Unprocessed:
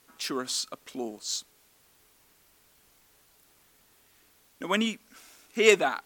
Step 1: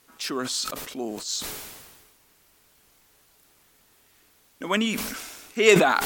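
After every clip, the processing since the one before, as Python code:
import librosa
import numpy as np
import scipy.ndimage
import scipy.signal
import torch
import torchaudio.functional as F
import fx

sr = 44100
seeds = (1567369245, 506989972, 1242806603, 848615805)

y = fx.sustainer(x, sr, db_per_s=39.0)
y = y * librosa.db_to_amplitude(2.0)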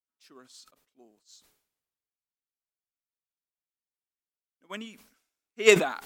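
y = fx.upward_expand(x, sr, threshold_db=-42.0, expansion=2.5)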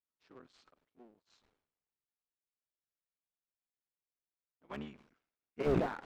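y = fx.cycle_switch(x, sr, every=3, mode='muted')
y = fx.spacing_loss(y, sr, db_at_10k=31)
y = fx.slew_limit(y, sr, full_power_hz=21.0)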